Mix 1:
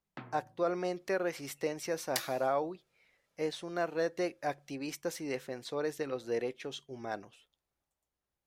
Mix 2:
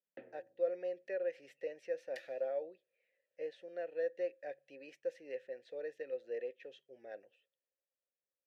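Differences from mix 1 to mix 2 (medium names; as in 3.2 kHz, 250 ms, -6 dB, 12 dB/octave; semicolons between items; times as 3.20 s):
first sound: add peaking EQ 330 Hz +11.5 dB 2.2 oct; master: add vowel filter e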